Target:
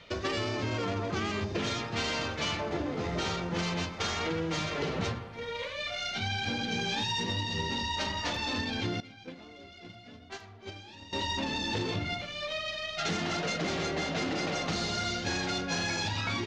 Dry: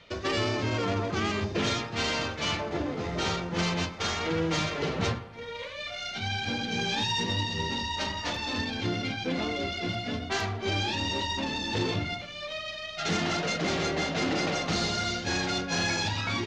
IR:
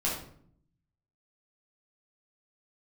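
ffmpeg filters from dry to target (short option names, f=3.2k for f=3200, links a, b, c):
-filter_complex "[0:a]acompressor=threshold=-30dB:ratio=6,asettb=1/sr,asplit=3[a][b][c];[a]atrim=end=9.004[d];[b]atrim=start=9:end=11.13,asetpts=PTS-STARTPTS,afade=t=in:d=0.004:c=qsin,afade=t=out:st=2.126:d=0.004:c=qsin,agate=range=-17dB:threshold=-30dB:ratio=16:detection=peak[e];[c]atrim=start=11.126[f];[d][e]acrossfade=d=0.004:c1=hsin:c2=qsin[g];[g][f]acrossfade=d=0.004:c1=qsin:c2=hsin,volume=1.5dB"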